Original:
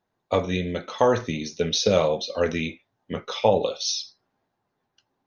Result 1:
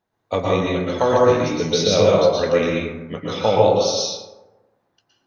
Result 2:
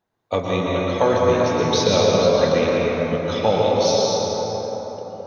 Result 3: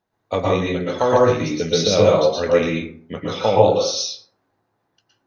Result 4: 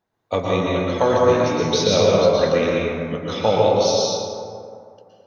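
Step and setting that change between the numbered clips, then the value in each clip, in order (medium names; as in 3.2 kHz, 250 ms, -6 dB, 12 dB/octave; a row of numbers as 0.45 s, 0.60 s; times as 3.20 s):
plate-style reverb, RT60: 1.1 s, 5.2 s, 0.52 s, 2.4 s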